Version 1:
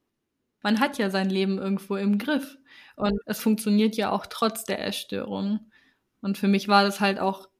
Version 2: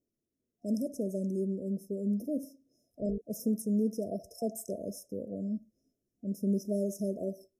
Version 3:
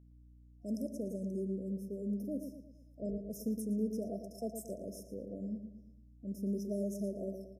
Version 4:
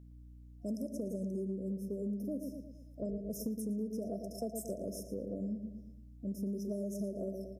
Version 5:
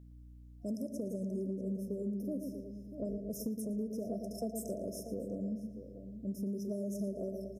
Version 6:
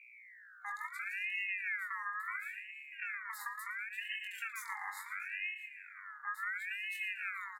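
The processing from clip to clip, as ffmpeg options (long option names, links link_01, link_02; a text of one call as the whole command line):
ffmpeg -i in.wav -af "afftfilt=real='re*(1-between(b*sr/4096,700,5100))':imag='im*(1-between(b*sr/4096,700,5100))':win_size=4096:overlap=0.75,volume=-7.5dB" out.wav
ffmpeg -i in.wav -filter_complex "[0:a]aeval=exprs='val(0)+0.00251*(sin(2*PI*60*n/s)+sin(2*PI*2*60*n/s)/2+sin(2*PI*3*60*n/s)/3+sin(2*PI*4*60*n/s)/4+sin(2*PI*5*60*n/s)/5)':channel_layout=same,asplit=2[link_01][link_02];[link_02]adelay=114,lowpass=frequency=3500:poles=1,volume=-7.5dB,asplit=2[link_03][link_04];[link_04]adelay=114,lowpass=frequency=3500:poles=1,volume=0.46,asplit=2[link_05][link_06];[link_06]adelay=114,lowpass=frequency=3500:poles=1,volume=0.46,asplit=2[link_07][link_08];[link_08]adelay=114,lowpass=frequency=3500:poles=1,volume=0.46,asplit=2[link_09][link_10];[link_10]adelay=114,lowpass=frequency=3500:poles=1,volume=0.46[link_11];[link_03][link_05][link_07][link_09][link_11]amix=inputs=5:normalize=0[link_12];[link_01][link_12]amix=inputs=2:normalize=0,volume=-6dB" out.wav
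ffmpeg -i in.wav -af "acompressor=threshold=-40dB:ratio=6,volume=5.5dB" out.wav
ffmpeg -i in.wav -filter_complex "[0:a]asplit=2[link_01][link_02];[link_02]adelay=641.4,volume=-10dB,highshelf=frequency=4000:gain=-14.4[link_03];[link_01][link_03]amix=inputs=2:normalize=0" out.wav
ffmpeg -i in.wav -filter_complex "[0:a]asplit=2[link_01][link_02];[link_02]adelay=21,volume=-5.5dB[link_03];[link_01][link_03]amix=inputs=2:normalize=0,aeval=exprs='val(0)*sin(2*PI*1900*n/s+1900*0.25/0.72*sin(2*PI*0.72*n/s))':channel_layout=same,volume=-1.5dB" out.wav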